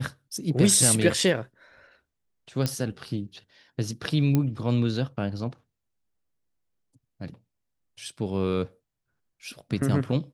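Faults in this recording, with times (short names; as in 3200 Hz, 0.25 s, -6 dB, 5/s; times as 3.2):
2.66 pop -12 dBFS
4.35 pop -11 dBFS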